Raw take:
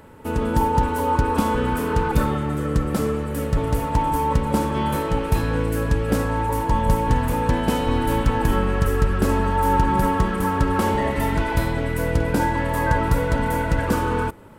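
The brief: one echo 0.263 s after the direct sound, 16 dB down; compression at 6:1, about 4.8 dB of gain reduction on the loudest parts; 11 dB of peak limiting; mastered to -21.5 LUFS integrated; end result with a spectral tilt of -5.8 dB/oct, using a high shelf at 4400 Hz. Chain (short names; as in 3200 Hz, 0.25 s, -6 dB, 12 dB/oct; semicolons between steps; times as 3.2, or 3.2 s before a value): high shelf 4400 Hz +3 dB; compressor 6:1, threshold -19 dBFS; limiter -19.5 dBFS; echo 0.263 s -16 dB; gain +7 dB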